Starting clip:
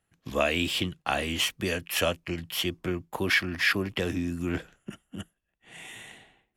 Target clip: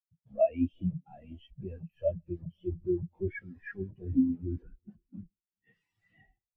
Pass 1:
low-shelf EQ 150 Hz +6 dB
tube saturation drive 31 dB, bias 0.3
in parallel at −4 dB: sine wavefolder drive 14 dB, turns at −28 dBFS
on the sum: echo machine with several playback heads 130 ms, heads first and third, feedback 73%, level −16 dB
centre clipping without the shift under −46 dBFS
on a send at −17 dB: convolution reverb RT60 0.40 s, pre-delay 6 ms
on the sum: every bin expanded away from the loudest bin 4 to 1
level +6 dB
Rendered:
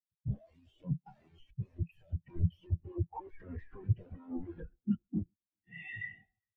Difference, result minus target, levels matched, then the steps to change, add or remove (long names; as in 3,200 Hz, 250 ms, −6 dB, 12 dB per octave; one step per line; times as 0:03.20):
sine wavefolder: distortion −13 dB
change: sine wavefolder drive 22 dB, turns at −28 dBFS